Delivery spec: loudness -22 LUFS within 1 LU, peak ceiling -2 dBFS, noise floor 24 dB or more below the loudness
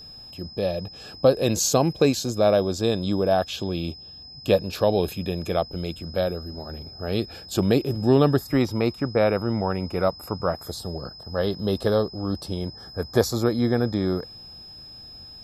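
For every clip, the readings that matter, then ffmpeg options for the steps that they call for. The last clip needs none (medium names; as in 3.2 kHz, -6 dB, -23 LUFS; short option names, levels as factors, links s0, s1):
steady tone 5.1 kHz; tone level -41 dBFS; loudness -24.0 LUFS; peak level -5.5 dBFS; loudness target -22.0 LUFS
-> -af "bandreject=f=5100:w=30"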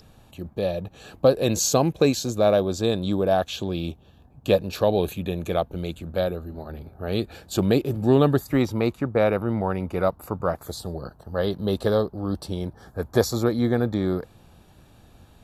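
steady tone not found; loudness -24.5 LUFS; peak level -5.5 dBFS; loudness target -22.0 LUFS
-> -af "volume=1.33"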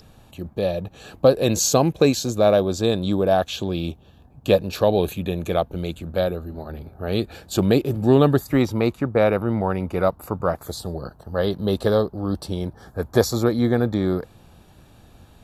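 loudness -22.0 LUFS; peak level -3.0 dBFS; noise floor -51 dBFS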